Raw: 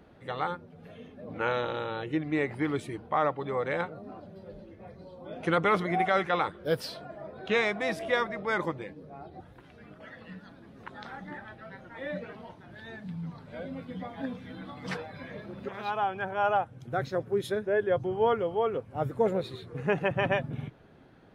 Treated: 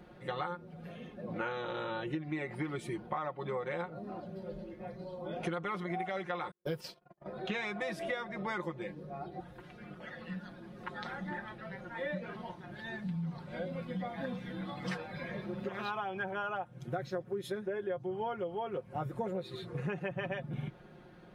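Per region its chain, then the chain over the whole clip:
0:06.51–0:07.26: EQ curve with evenly spaced ripples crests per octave 0.74, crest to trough 6 dB + noise gate −41 dBFS, range −45 dB
whole clip: comb filter 5.6 ms, depth 70%; downward compressor 12 to 1, threshold −33 dBFS

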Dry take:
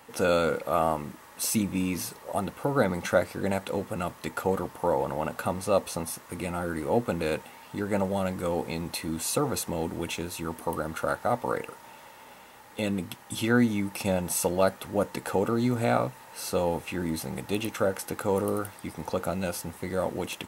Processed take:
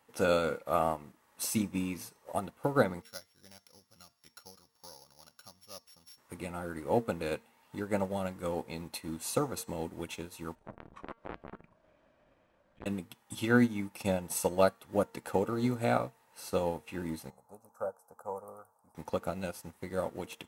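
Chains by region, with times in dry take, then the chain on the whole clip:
0:03.02–0:06.18: samples sorted by size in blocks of 8 samples + guitar amp tone stack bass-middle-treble 5-5-5
0:10.55–0:12.86: frequency shifter −290 Hz + head-to-tape spacing loss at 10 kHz 23 dB + saturating transformer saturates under 1,400 Hz
0:17.30–0:18.95: Butterworth band-reject 3,100 Hz, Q 0.57 + bass and treble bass −14 dB, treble −9 dB + phaser with its sweep stopped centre 830 Hz, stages 4
whole clip: transient designer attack +2 dB, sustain −3 dB; hum removal 229.3 Hz, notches 39; expander for the loud parts 1.5 to 1, over −46 dBFS; level −2 dB

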